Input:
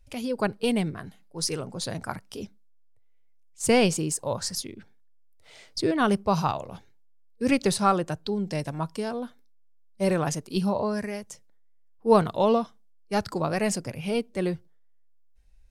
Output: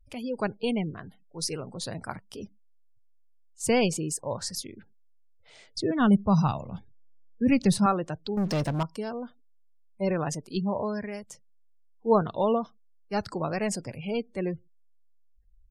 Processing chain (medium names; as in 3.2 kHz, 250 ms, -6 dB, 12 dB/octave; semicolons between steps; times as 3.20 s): spectral gate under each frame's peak -30 dB strong; 5.90–7.86 s: resonant low shelf 280 Hz +7 dB, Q 1.5; 8.37–8.83 s: waveshaping leveller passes 3; trim -3 dB